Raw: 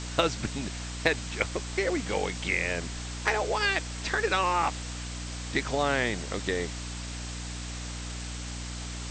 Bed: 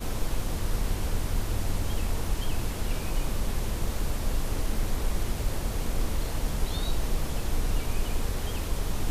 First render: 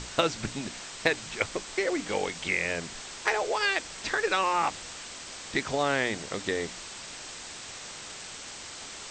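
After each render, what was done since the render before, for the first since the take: notches 60/120/180/240/300 Hz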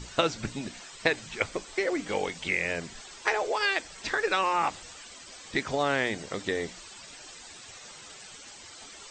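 denoiser 12 dB, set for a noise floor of -43 dBFS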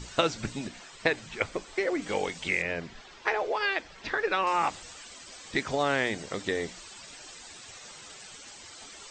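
0.67–2.02 high shelf 4800 Hz -7 dB; 2.62–4.47 air absorption 160 m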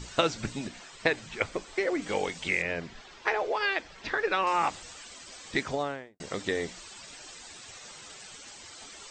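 5.58–6.2 studio fade out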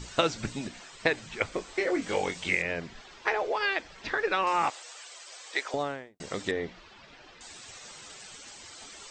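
1.5–2.55 doubler 22 ms -6 dB; 4.7–5.74 HPF 460 Hz 24 dB/oct; 6.51–7.41 air absorption 260 m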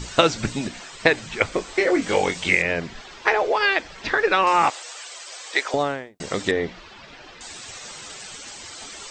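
gain +8.5 dB

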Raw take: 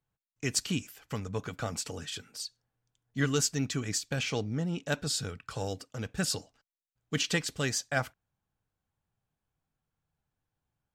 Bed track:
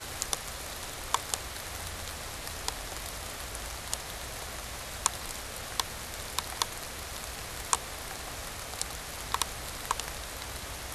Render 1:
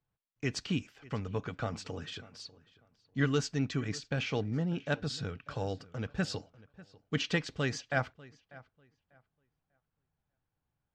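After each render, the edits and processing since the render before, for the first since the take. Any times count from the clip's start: air absorption 170 m; darkening echo 0.594 s, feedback 22%, low-pass 3700 Hz, level -20.5 dB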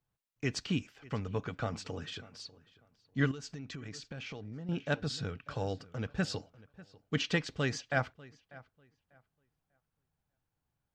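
3.31–4.69 compressor 20:1, threshold -39 dBFS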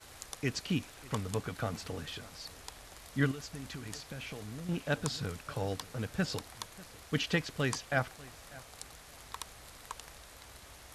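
add bed track -13 dB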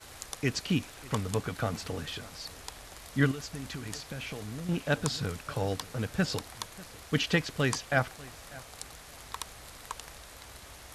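gain +4 dB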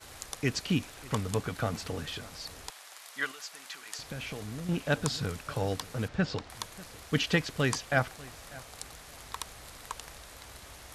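2.7–3.99 HPF 860 Hz; 6.08–6.5 air absorption 130 m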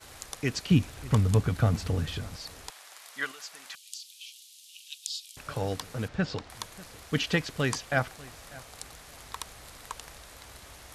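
0.71–2.36 bell 72 Hz +13 dB 3 oct; 3.75–5.37 steep high-pass 2900 Hz 48 dB/oct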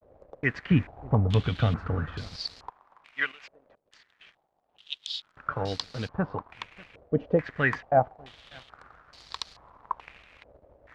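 crossover distortion -49 dBFS; stepped low-pass 2.3 Hz 560–4500 Hz

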